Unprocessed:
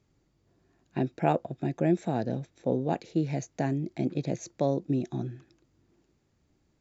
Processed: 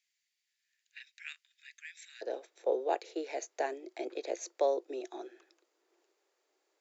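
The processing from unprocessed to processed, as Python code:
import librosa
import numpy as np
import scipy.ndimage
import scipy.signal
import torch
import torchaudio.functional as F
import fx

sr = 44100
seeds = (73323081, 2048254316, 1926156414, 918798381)

y = fx.steep_highpass(x, sr, hz=fx.steps((0.0, 1800.0), (2.21, 380.0)), slope=48)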